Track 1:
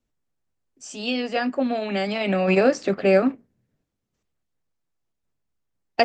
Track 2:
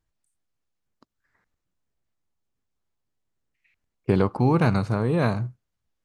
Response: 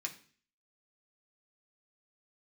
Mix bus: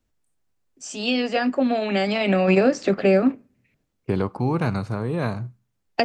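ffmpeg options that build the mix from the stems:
-filter_complex "[0:a]volume=1.41,asplit=2[s0][s1];[s1]volume=0.075[s2];[1:a]volume=0.708,asplit=2[s3][s4];[s4]volume=0.1[s5];[2:a]atrim=start_sample=2205[s6];[s2][s5]amix=inputs=2:normalize=0[s7];[s7][s6]afir=irnorm=-1:irlink=0[s8];[s0][s3][s8]amix=inputs=3:normalize=0,acrossover=split=360[s9][s10];[s10]acompressor=threshold=0.112:ratio=5[s11];[s9][s11]amix=inputs=2:normalize=0"

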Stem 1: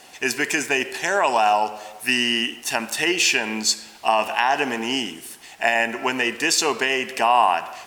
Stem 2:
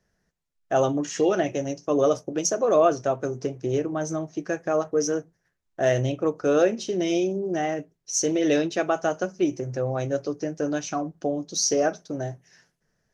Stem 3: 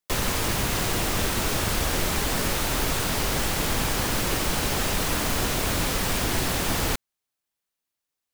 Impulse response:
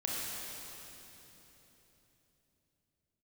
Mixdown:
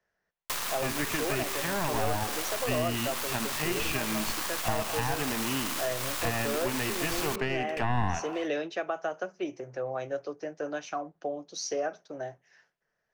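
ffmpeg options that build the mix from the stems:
-filter_complex "[0:a]aeval=exprs='clip(val(0),-1,0.0473)':c=same,bass=f=250:g=3,treble=f=4000:g=-14,adelay=600,volume=0.631[s0];[1:a]acrossover=split=460 3700:gain=0.178 1 0.2[s1][s2][s3];[s1][s2][s3]amix=inputs=3:normalize=0,volume=0.794[s4];[2:a]highpass=850,equalizer=f=1100:t=o:w=0.31:g=5,acrusher=bits=5:dc=4:mix=0:aa=0.000001,adelay=400,volume=0.841[s5];[s0][s4][s5]amix=inputs=3:normalize=0,acrossover=split=280[s6][s7];[s7]acompressor=threshold=0.0398:ratio=6[s8];[s6][s8]amix=inputs=2:normalize=0"

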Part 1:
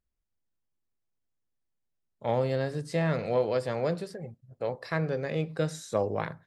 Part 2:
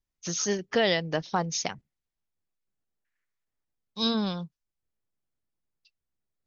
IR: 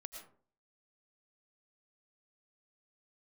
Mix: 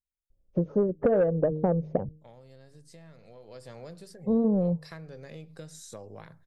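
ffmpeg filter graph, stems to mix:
-filter_complex "[0:a]bass=f=250:g=4,treble=f=4000:g=11,acompressor=threshold=0.0282:ratio=5,volume=0.335,afade=t=in:st=3.35:d=0.31:silence=0.375837[s0];[1:a]lowpass=f=540:t=q:w=5,aemphasis=mode=reproduction:type=riaa,bandreject=f=154.6:t=h:w=4,bandreject=f=309.2:t=h:w=4,bandreject=f=463.8:t=h:w=4,adelay=300,volume=1.33[s1];[s0][s1]amix=inputs=2:normalize=0,asoftclip=type=tanh:threshold=0.501,acompressor=threshold=0.0794:ratio=4"

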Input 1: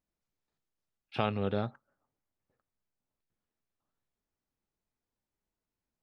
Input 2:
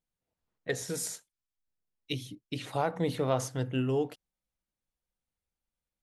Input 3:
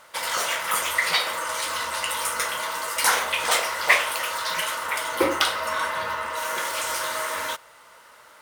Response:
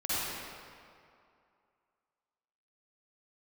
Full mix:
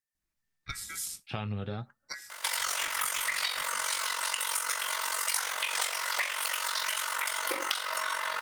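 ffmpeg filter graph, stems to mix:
-filter_complex "[0:a]flanger=delay=2.6:depth=8.7:regen=55:speed=0.47:shape=sinusoidal,adelay=150,volume=0.596[s0];[1:a]aeval=exprs='val(0)*sin(2*PI*1800*n/s)':c=same,volume=0.473[s1];[2:a]highpass=500,tremolo=f=46:d=0.71,adelay=2300,volume=1.33[s2];[s0][s2]amix=inputs=2:normalize=0,equalizer=f=1900:t=o:w=2.3:g=7.5,acompressor=threshold=0.0501:ratio=2,volume=1[s3];[s1][s3]amix=inputs=2:normalize=0,bass=f=250:g=12,treble=f=4000:g=11,acompressor=threshold=0.0282:ratio=3"

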